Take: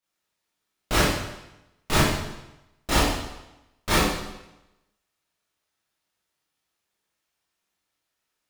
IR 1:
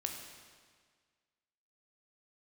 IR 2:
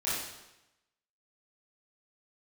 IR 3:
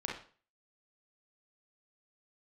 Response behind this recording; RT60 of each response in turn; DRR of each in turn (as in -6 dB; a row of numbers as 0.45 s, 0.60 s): 2; 1.7 s, 0.95 s, 0.40 s; 2.0 dB, -10.5 dB, -2.5 dB